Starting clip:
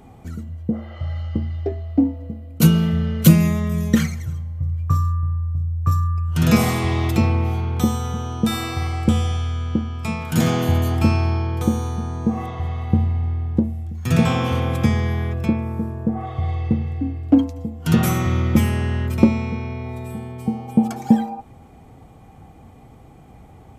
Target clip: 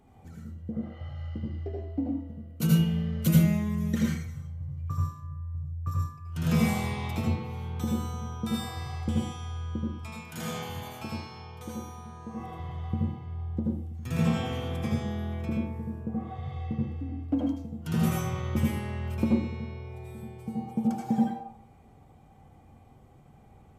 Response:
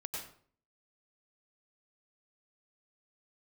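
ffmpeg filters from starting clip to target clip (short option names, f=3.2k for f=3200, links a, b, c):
-filter_complex "[0:a]asettb=1/sr,asplit=3[a][b][c];[a]atrim=end=9.934[d];[b]atrim=start=9.93:end=12.4,asetpts=PTS-STARTPTS,afade=t=in:d=0.004:c=qsin,afade=t=out:st=2.466:d=0.004:c=qsin,lowshelf=f=360:g=-11[e];[c]atrim=start=12.396[f];[d][e]acrossfade=d=0.004:c1=hsin:c2=qsin[g];[g][f]acrossfade=d=0.004:c1=qsin:c2=hsin[h];[1:a]atrim=start_sample=2205,asetrate=52920,aresample=44100[i];[h][i]afir=irnorm=-1:irlink=0,volume=-8.5dB"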